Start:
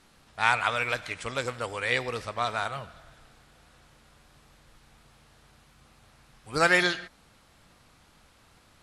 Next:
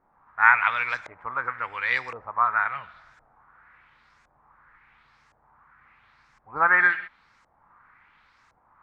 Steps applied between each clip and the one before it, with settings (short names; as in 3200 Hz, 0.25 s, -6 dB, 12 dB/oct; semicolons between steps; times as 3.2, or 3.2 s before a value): band shelf 1400 Hz +14 dB; LFO low-pass saw up 0.94 Hz 580–7100 Hz; gain -11 dB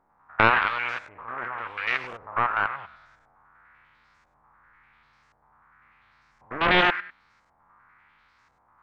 stepped spectrum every 0.1 s; Doppler distortion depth 0.72 ms